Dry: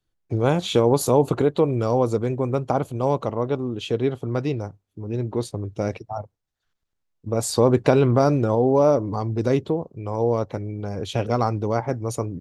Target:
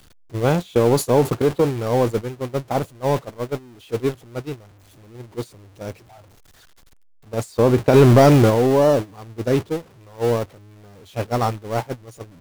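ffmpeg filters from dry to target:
-filter_complex "[0:a]aeval=exprs='val(0)+0.5*0.0794*sgn(val(0))':c=same,asplit=3[a][b][c];[a]afade=t=out:st=7.93:d=0.02[d];[b]acontrast=54,afade=t=in:st=7.93:d=0.02,afade=t=out:st=8.49:d=0.02[e];[c]afade=t=in:st=8.49:d=0.02[f];[d][e][f]amix=inputs=3:normalize=0,agate=range=-22dB:threshold=-18dB:ratio=16:detection=peak"

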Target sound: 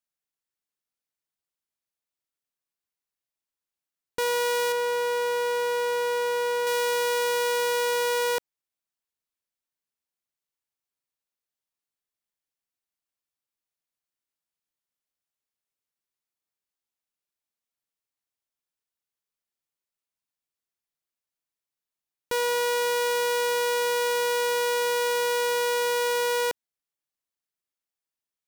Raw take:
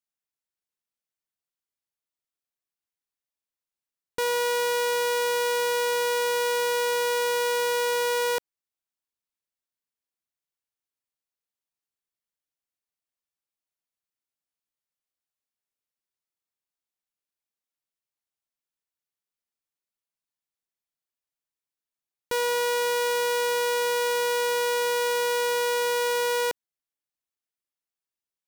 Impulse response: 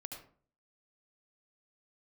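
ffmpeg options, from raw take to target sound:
-filter_complex "[0:a]asettb=1/sr,asplit=3[a][b][c];[a]atrim=end=4.724[d];[b]atrim=start=4.72:end=6.67,asetpts=PTS-STARTPTS,afade=t=in:d=0.004:c=qsin,afade=t=out:st=1.946:d=0.004:c=qsin,highshelf=f=2.5k:g=-8[e];[c]atrim=start=6.666[f];[d][e]acrossfade=d=0.004:c1=hsin:c2=qsin[g];[g][f]acrossfade=d=0.004:c1=qsin:c2=hsin"

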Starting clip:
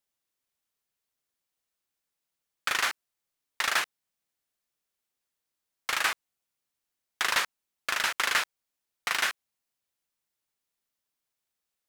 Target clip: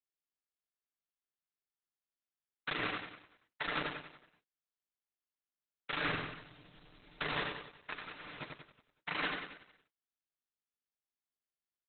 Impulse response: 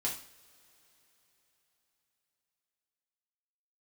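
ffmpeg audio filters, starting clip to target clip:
-filter_complex "[0:a]asettb=1/sr,asplit=3[a][b][c];[a]atrim=end=6.024[d];[b]atrim=start=6.02:end=7.24,asetpts=PTS-STARTPTS,afade=t=in:d=0.004:c=qsin,afade=t=out:st=1.216:d=0.004:c=qsin,aeval=exprs='val(0)+0.5*0.0376*sgn(val(0))':c=same[e];[c]atrim=start=7.236[f];[d][e]acrossfade=d=0.004:c1=hsin:c2=qsin[g];[g][f]acrossfade=d=0.004:c1=qsin:c2=hsin,bandreject=f=66.75:t=h:w=4,bandreject=f=133.5:t=h:w=4,bandreject=f=200.25:t=h:w=4,bandreject=f=267:t=h:w=4,bandreject=f=333.75:t=h:w=4,bandreject=f=400.5:t=h:w=4,bandreject=f=467.25:t=h:w=4,agate=range=-33dB:threshold=-23dB:ratio=3:detection=peak,aecho=1:1:6.7:0.84,acrossover=split=400[h][i];[h]aeval=exprs='0.0158*sin(PI/2*2.51*val(0)/0.0158)':c=same[j];[i]acompressor=threshold=-33dB:ratio=6[k];[j][k]amix=inputs=2:normalize=0,flanger=delay=3.3:depth=6.5:regen=-39:speed=0.87:shape=triangular,asplit=3[l][m][n];[l]afade=t=out:st=7.92:d=0.02[o];[m]aeval=exprs='(tanh(355*val(0)+0.2)-tanh(0.2))/355':c=same,afade=t=in:st=7.92:d=0.02,afade=t=out:st=8.4:d=0.02[p];[n]afade=t=in:st=8.4:d=0.02[q];[o][p][q]amix=inputs=3:normalize=0,asplit=2[r][s];[s]aecho=0:1:93|186|279|372|465|558:0.631|0.303|0.145|0.0698|0.0335|0.0161[t];[r][t]amix=inputs=2:normalize=0,volume=4dB" -ar 48000 -c:a libopus -b:a 8k

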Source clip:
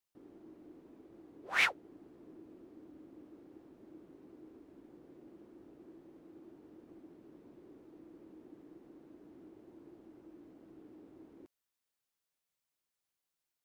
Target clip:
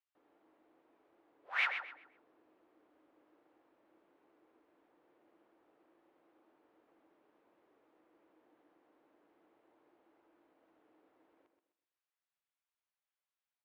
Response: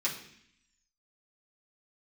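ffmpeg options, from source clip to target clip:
-filter_complex "[0:a]acrossover=split=540 3700:gain=0.0708 1 0.1[a][b][c];[a][b][c]amix=inputs=3:normalize=0,bandreject=f=380:w=12,asplit=2[d][e];[e]adelay=128,lowpass=f=4k:p=1,volume=-7dB,asplit=2[f][g];[g]adelay=128,lowpass=f=4k:p=1,volume=0.32,asplit=2[h][i];[i]adelay=128,lowpass=f=4k:p=1,volume=0.32,asplit=2[j][k];[k]adelay=128,lowpass=f=4k:p=1,volume=0.32[l];[f][h][j][l]amix=inputs=4:normalize=0[m];[d][m]amix=inputs=2:normalize=0,volume=-3dB"

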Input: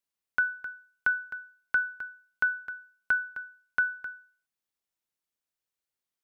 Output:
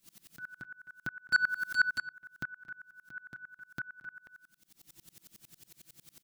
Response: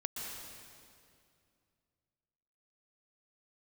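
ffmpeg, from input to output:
-filter_complex "[0:a]bandreject=f=50:t=h:w=6,bandreject=f=100:t=h:w=6,bandreject=f=150:t=h:w=6,bandreject=f=200:t=h:w=6,bandreject=f=250:t=h:w=6,bandreject=f=300:t=h:w=6,bandreject=f=350:t=h:w=6,asplit=2[a][b];[b]acompressor=mode=upward:threshold=-28dB:ratio=2.5,volume=-1dB[c];[a][c]amix=inputs=2:normalize=0,aecho=1:1:6:0.84,acompressor=threshold=-30dB:ratio=8,asplit=3[d][e][f];[d]afade=t=out:st=1.31:d=0.02[g];[e]aeval=exprs='0.316*sin(PI/2*7.08*val(0)/0.316)':c=same,afade=t=in:st=1.31:d=0.02,afade=t=out:st=1.89:d=0.02[h];[f]afade=t=in:st=1.89:d=0.02[i];[g][h][i]amix=inputs=3:normalize=0,equalizer=f=125:t=o:w=1:g=9,equalizer=f=250:t=o:w=1:g=9,equalizer=f=500:t=o:w=1:g=-7,equalizer=f=1k:t=o:w=1:g=-8,equalizer=f=2k:t=o:w=1:g=-4,asoftclip=type=tanh:threshold=-17dB,asplit=2[j][k];[k]adelay=227.4,volume=-10dB,highshelf=f=4k:g=-5.12[l];[j][l]amix=inputs=2:normalize=0,aeval=exprs='val(0)*pow(10,-30*if(lt(mod(-11*n/s,1),2*abs(-11)/1000),1-mod(-11*n/s,1)/(2*abs(-11)/1000),(mod(-11*n/s,1)-2*abs(-11)/1000)/(1-2*abs(-11)/1000))/20)':c=same,volume=4dB"

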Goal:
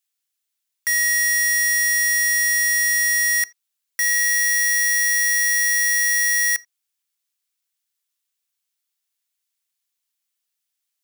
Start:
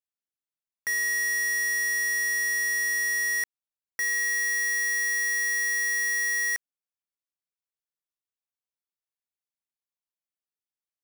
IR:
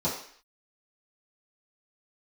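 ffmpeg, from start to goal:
-filter_complex "[0:a]highpass=f=150:w=0.5412,highpass=f=150:w=1.3066,tiltshelf=f=1.3k:g=-9.5,alimiter=limit=-17dB:level=0:latency=1,asplit=2[a][b];[1:a]atrim=start_sample=2205,atrim=end_sample=3969[c];[b][c]afir=irnorm=-1:irlink=0,volume=-26.5dB[d];[a][d]amix=inputs=2:normalize=0,volume=7dB"

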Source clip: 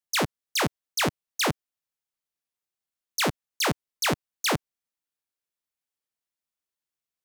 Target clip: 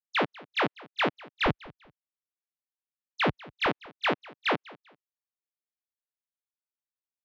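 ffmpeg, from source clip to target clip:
-af "lowpass=f=3.3k:w=0.5412,lowpass=f=3.3k:w=1.3066,agate=range=-14dB:threshold=-42dB:ratio=16:detection=peak,asetnsamples=n=441:p=0,asendcmd='1.46 highpass f 42;3.66 highpass f 260',highpass=230,aecho=1:1:196|392:0.0841|0.0227"

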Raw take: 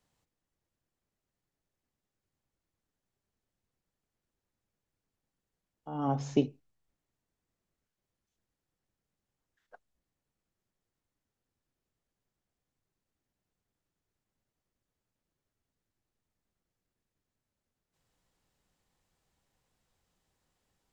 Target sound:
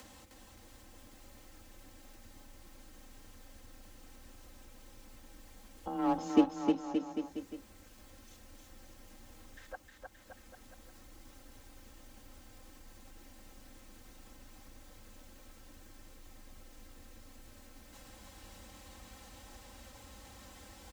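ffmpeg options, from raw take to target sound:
-filter_complex "[0:a]aecho=1:1:3.9:0.98,asplit=2[a][b];[b]acrusher=bits=3:mix=0:aa=0.5,volume=-10dB[c];[a][c]amix=inputs=2:normalize=0,acompressor=mode=upward:threshold=-28dB:ratio=2.5,aecho=1:1:310|573.5|797.5|987.9|1150:0.631|0.398|0.251|0.158|0.1,afreqshift=24,volume=-5.5dB"

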